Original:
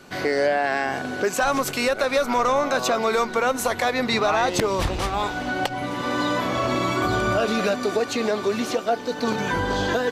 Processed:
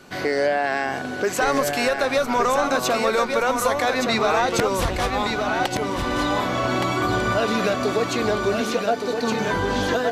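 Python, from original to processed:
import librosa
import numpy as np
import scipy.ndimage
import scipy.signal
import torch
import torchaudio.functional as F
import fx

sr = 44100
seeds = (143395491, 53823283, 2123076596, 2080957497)

y = x + 10.0 ** (-5.0 / 20.0) * np.pad(x, (int(1169 * sr / 1000.0), 0))[:len(x)]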